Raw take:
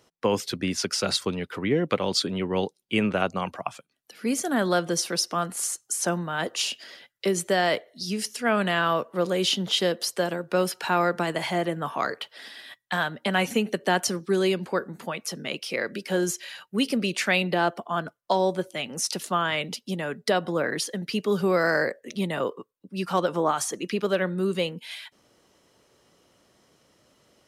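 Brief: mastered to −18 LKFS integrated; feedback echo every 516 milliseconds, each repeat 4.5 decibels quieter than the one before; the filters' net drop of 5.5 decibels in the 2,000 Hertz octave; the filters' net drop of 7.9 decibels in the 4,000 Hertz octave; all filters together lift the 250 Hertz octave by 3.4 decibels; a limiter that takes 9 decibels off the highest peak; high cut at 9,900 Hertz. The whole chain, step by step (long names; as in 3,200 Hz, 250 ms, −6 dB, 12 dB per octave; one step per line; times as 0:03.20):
low-pass filter 9,900 Hz
parametric band 250 Hz +5 dB
parametric band 2,000 Hz −5.5 dB
parametric band 4,000 Hz −9 dB
brickwall limiter −17.5 dBFS
repeating echo 516 ms, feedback 60%, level −4.5 dB
level +9.5 dB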